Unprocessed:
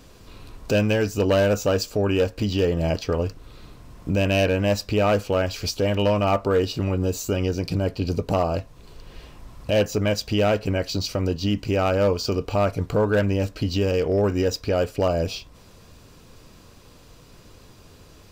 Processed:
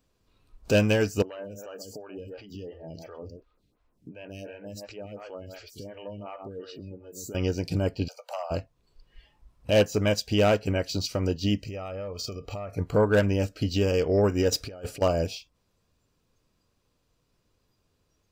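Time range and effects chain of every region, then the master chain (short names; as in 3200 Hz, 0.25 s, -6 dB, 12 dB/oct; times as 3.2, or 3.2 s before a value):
1.22–7.35 echo 0.127 s -11 dB + compressor, threshold -27 dBFS + photocell phaser 2.8 Hz
8.08–8.51 steep high-pass 540 Hz 72 dB/oct + compressor 2.5:1, threshold -26 dBFS
11.59–12.76 notch 1500 Hz, Q 13 + comb 1.6 ms, depth 32% + compressor 16:1, threshold -25 dBFS
14.52–15.02 bell 9700 Hz +4 dB 0.34 oct + negative-ratio compressor -27 dBFS, ratio -0.5 + hard clip -19 dBFS
whole clip: spectral noise reduction 16 dB; dynamic EQ 8100 Hz, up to +4 dB, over -47 dBFS, Q 0.81; upward expander 1.5:1, over -31 dBFS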